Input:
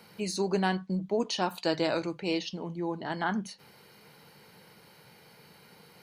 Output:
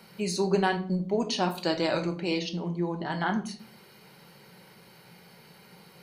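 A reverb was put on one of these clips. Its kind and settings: simulated room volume 460 m³, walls furnished, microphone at 1.1 m; trim +1 dB

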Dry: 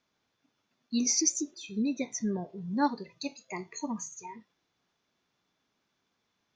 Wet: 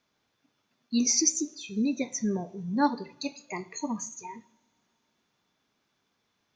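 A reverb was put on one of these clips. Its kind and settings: two-slope reverb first 0.61 s, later 3.1 s, from -22 dB, DRR 16 dB; trim +2.5 dB

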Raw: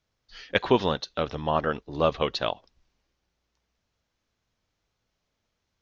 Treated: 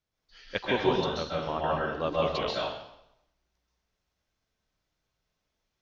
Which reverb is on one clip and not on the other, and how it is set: plate-style reverb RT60 0.79 s, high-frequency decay 0.95×, pre-delay 120 ms, DRR -5 dB; trim -8.5 dB

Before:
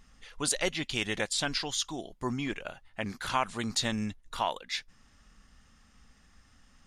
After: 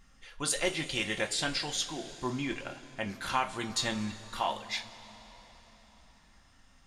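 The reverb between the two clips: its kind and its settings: two-slope reverb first 0.23 s, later 4.3 s, from -20 dB, DRR 2 dB; trim -2.5 dB

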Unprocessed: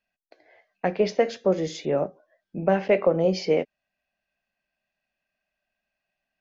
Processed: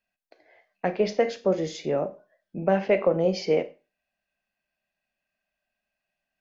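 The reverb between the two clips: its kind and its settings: Schroeder reverb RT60 0.31 s, combs from 30 ms, DRR 12.5 dB; trim -1.5 dB

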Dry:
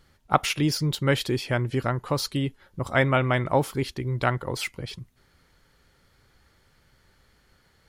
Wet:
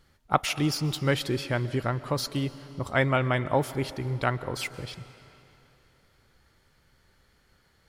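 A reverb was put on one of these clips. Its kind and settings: algorithmic reverb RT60 3 s, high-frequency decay 0.9×, pre-delay 95 ms, DRR 15 dB; trim -2.5 dB

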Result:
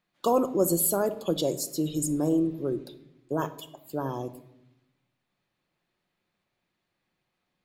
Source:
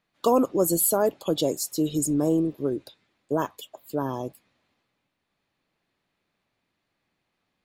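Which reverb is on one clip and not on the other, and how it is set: simulated room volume 2200 m³, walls furnished, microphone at 0.94 m; trim -3 dB

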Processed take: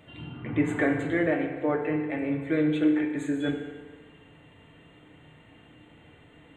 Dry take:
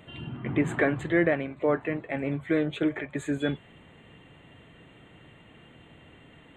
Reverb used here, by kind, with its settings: FDN reverb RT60 1.5 s, low-frequency decay 0.8×, high-frequency decay 0.7×, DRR 2 dB; trim -3.5 dB

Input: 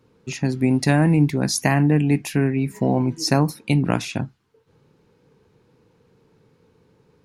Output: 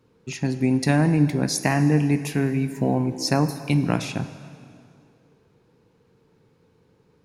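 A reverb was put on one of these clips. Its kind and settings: plate-style reverb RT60 2.4 s, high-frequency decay 0.85×, DRR 10.5 dB; trim -2.5 dB

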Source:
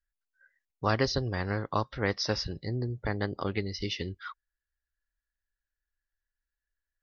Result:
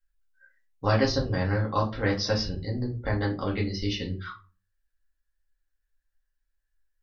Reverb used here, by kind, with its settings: simulated room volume 130 m³, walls furnished, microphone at 2.1 m; trim -2 dB

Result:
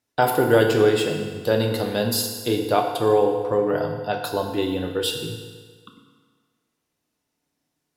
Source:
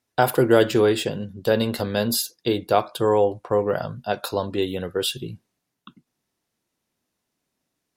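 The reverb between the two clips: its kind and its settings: FDN reverb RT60 1.6 s, low-frequency decay 0.85×, high-frequency decay 0.9×, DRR 2.5 dB; trim -1.5 dB

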